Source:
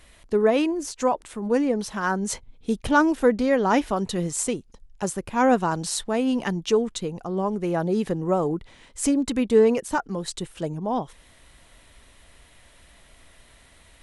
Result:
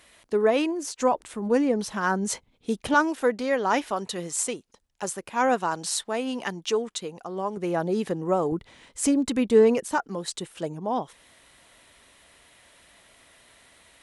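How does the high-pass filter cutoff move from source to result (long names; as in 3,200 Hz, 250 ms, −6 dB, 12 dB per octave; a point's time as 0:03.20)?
high-pass filter 6 dB per octave
310 Hz
from 0:00.99 79 Hz
from 0:02.28 230 Hz
from 0:02.94 580 Hz
from 0:07.57 240 Hz
from 0:08.52 95 Hz
from 0:09.85 270 Hz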